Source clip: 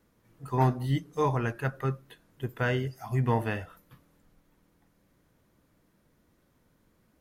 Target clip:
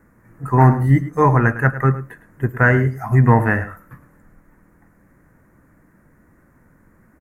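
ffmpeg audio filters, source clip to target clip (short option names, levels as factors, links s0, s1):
-af "firequalizer=gain_entry='entry(270,0);entry(440,-4);entry(1800,4);entry(3200,-26);entry(7100,-8)':delay=0.05:min_phase=1,aecho=1:1:107:0.188,alimiter=level_in=5.62:limit=0.891:release=50:level=0:latency=1,volume=0.891"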